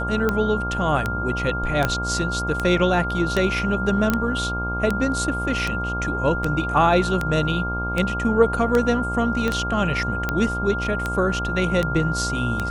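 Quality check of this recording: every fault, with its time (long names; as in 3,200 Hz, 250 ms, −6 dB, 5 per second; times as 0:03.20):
mains buzz 60 Hz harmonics 20 −28 dBFS
scratch tick 78 rpm −9 dBFS
whistle 1,400 Hz −26 dBFS
0:01.85: click −7 dBFS
0:04.10: click −7 dBFS
0:09.48: click −11 dBFS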